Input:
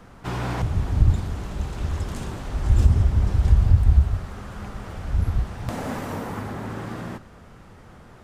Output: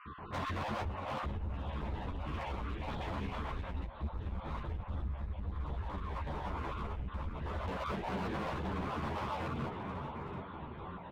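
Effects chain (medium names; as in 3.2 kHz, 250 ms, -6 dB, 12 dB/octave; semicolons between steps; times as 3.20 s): random holes in the spectrogram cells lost 31%; peaking EQ 1.4 kHz +6.5 dB 0.46 oct; delay 312 ms -13.5 dB; speed mistake 45 rpm record played at 33 rpm; elliptic low-pass 3.6 kHz; feedback delay 738 ms, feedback 39%, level -13 dB; compression 4:1, threshold -31 dBFS, peak gain reduction 17.5 dB; high-pass 92 Hz 6 dB/octave; hard clipper -39 dBFS, distortion -8 dB; three-phase chorus; trim +7 dB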